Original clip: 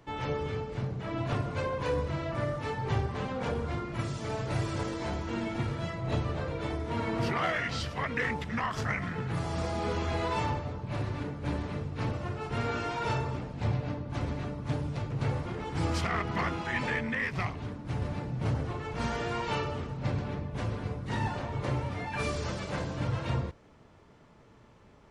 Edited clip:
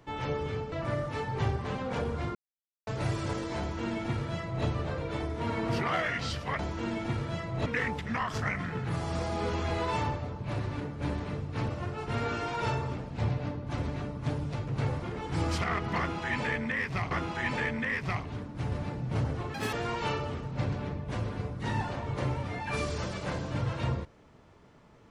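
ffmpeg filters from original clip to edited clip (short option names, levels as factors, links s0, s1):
-filter_complex "[0:a]asplit=9[s0][s1][s2][s3][s4][s5][s6][s7][s8];[s0]atrim=end=0.722[s9];[s1]atrim=start=2.218:end=3.85,asetpts=PTS-STARTPTS,afade=t=out:st=1.628:d=0.004:c=hsin[s10];[s2]atrim=start=3.85:end=4.37,asetpts=PTS-STARTPTS,volume=0[s11];[s3]atrim=start=4.37:end=8.092,asetpts=PTS-STARTPTS,afade=t=in:d=0.004:c=hsin[s12];[s4]atrim=start=5.088:end=6.162[s13];[s5]atrim=start=8.088:end=17.542[s14];[s6]atrim=start=16.408:end=18.844[s15];[s7]atrim=start=18.84:end=19.19,asetpts=PTS-STARTPTS,asetrate=81585,aresample=44100,atrim=end_sample=8343,asetpts=PTS-STARTPTS[s16];[s8]atrim=start=19.186[s17];[s10][s11][s12]concat=n=3:v=0:a=1[s18];[s9][s18]acrossfade=d=0.004:c1=hsin:c2=hsin[s19];[s19][s13]acrossfade=d=0.004:c1=hsin:c2=hsin[s20];[s20][s14]acrossfade=d=0.004:c1=hsin:c2=hsin[s21];[s21][s15]acrossfade=d=0.004:c1=hsin:c2=hsin[s22];[s22][s16]acrossfade=d=0.004:c1=hsin:c2=hsin[s23];[s23][s17]acrossfade=d=0.004:c1=hsin:c2=hsin"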